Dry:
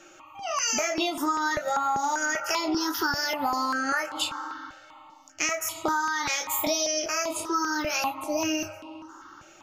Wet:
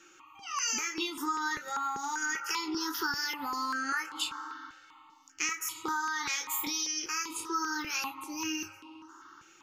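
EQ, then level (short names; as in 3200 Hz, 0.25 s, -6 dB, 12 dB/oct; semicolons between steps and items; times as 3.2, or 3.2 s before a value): Butterworth band-stop 650 Hz, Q 1.5; low shelf 220 Hz -9 dB; -4.5 dB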